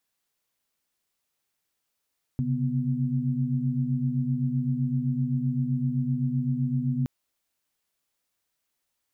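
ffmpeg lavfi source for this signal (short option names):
-f lavfi -i "aevalsrc='0.0398*(sin(2*PI*130.81*t)+sin(2*PI*138.59*t)+sin(2*PI*246.94*t))':d=4.67:s=44100"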